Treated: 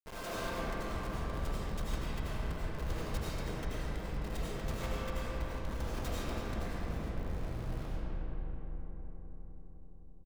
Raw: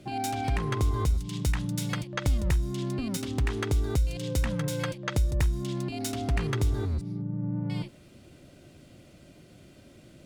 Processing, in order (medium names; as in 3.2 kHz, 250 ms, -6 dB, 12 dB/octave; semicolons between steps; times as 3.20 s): comb filter that takes the minimum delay 4.5 ms; peaking EQ 240 Hz -14.5 dB 2.8 oct; hum notches 50/100/150/200/250/300/350/400/450 Hz; comb 1.9 ms, depth 64%; compression 8:1, threshold -44 dBFS, peak gain reduction 19.5 dB; Chebyshev shaper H 3 -25 dB, 4 -24 dB, 5 -31 dB, 8 -30 dB, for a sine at -27 dBFS; Schmitt trigger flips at -45 dBFS; filtered feedback delay 255 ms, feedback 79%, low-pass 1.5 kHz, level -7 dB; reverberation RT60 3.7 s, pre-delay 55 ms, DRR -8.5 dB; trim +3.5 dB